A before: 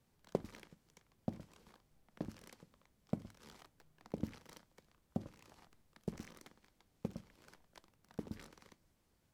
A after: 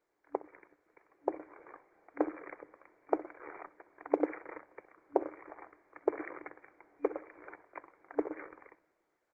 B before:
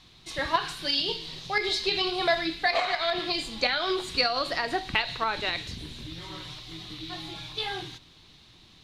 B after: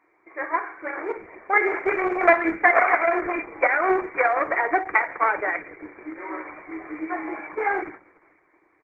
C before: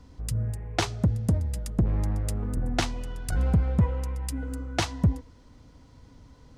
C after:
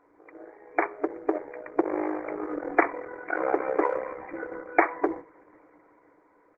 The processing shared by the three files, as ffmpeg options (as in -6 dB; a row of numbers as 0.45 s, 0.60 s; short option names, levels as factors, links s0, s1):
-filter_complex "[0:a]aeval=exprs='0.398*(cos(1*acos(clip(val(0)/0.398,-1,1)))-cos(1*PI/2))+0.0251*(cos(4*acos(clip(val(0)/0.398,-1,1)))-cos(4*PI/2))+0.0891*(cos(6*acos(clip(val(0)/0.398,-1,1)))-cos(6*PI/2))':c=same,dynaudnorm=f=120:g=17:m=6.31,asplit=2[s0][s1];[s1]adelay=63,lowpass=f=1700:p=1,volume=0.133,asplit=2[s2][s3];[s3]adelay=63,lowpass=f=1700:p=1,volume=0.32,asplit=2[s4][s5];[s5]adelay=63,lowpass=f=1700:p=1,volume=0.32[s6];[s2][s4][s6]amix=inputs=3:normalize=0[s7];[s0][s7]amix=inputs=2:normalize=0,afftfilt=real='re*between(b*sr/4096,290,2400)':imag='im*between(b*sr/4096,290,2400)':win_size=4096:overlap=0.75" -ar 48000 -c:a libopus -b:a 12k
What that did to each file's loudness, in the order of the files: +9.0 LU, +5.0 LU, -1.0 LU